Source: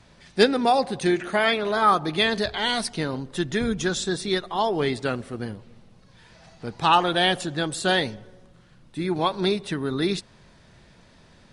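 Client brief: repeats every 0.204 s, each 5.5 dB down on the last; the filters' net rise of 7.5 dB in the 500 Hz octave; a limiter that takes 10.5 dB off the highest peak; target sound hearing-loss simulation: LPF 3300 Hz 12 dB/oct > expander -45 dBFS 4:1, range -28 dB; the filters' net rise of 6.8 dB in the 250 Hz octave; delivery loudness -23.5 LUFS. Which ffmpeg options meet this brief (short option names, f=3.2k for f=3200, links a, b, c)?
-af "equalizer=f=250:t=o:g=6.5,equalizer=f=500:t=o:g=7.5,alimiter=limit=-9.5dB:level=0:latency=1,lowpass=3.3k,aecho=1:1:204|408|612|816|1020|1224|1428:0.531|0.281|0.149|0.079|0.0419|0.0222|0.0118,agate=range=-28dB:threshold=-45dB:ratio=4,volume=-3.5dB"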